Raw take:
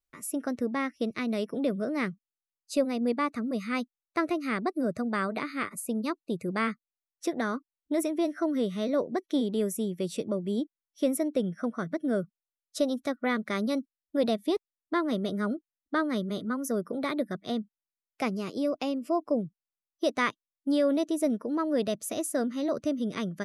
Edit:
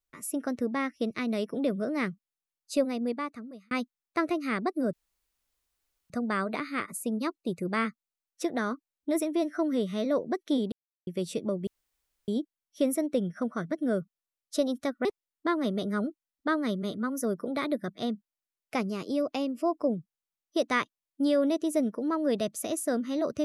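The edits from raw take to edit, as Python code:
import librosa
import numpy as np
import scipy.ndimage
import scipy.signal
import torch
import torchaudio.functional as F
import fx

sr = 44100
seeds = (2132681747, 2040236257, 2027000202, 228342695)

y = fx.edit(x, sr, fx.fade_out_span(start_s=2.8, length_s=0.91),
    fx.insert_room_tone(at_s=4.93, length_s=1.17),
    fx.silence(start_s=9.55, length_s=0.35),
    fx.insert_room_tone(at_s=10.5, length_s=0.61),
    fx.cut(start_s=13.27, length_s=1.25), tone=tone)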